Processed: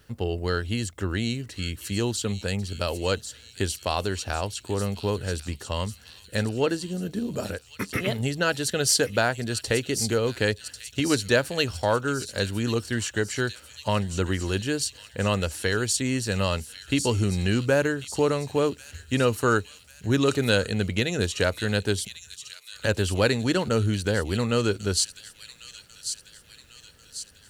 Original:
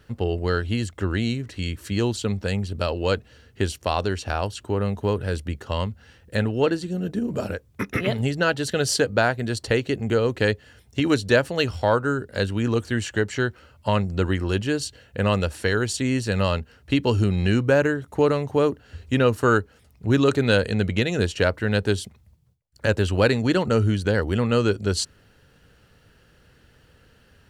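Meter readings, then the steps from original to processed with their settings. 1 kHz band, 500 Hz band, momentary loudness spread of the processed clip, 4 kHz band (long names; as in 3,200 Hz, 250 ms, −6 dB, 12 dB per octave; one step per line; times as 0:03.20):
−3.0 dB, −3.5 dB, 10 LU, +1.0 dB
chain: high-shelf EQ 4,800 Hz +11 dB
delay with a high-pass on its return 1,094 ms, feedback 54%, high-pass 4,000 Hz, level −6 dB
level −3.5 dB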